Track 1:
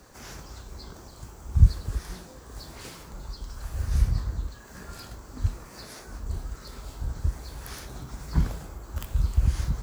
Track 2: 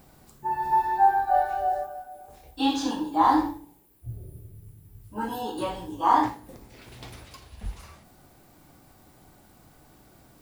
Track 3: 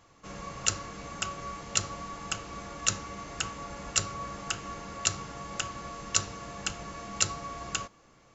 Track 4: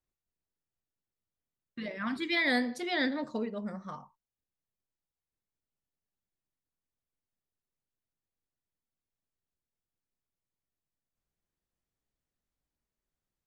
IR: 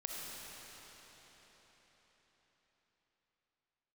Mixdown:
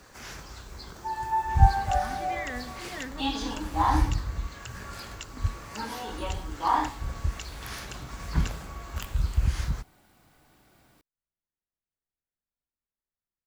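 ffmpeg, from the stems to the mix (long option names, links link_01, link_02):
-filter_complex "[0:a]volume=-3dB,asplit=2[link_01][link_02];[link_02]volume=-17dB[link_03];[1:a]adelay=600,volume=-7.5dB[link_04];[2:a]acompressor=threshold=-37dB:ratio=6,adelay=1250,volume=-8dB[link_05];[3:a]lowpass=1700,volume=-10dB[link_06];[4:a]atrim=start_sample=2205[link_07];[link_03][link_07]afir=irnorm=-1:irlink=0[link_08];[link_01][link_04][link_05][link_06][link_08]amix=inputs=5:normalize=0,equalizer=frequency=2300:width_type=o:width=2.3:gain=7"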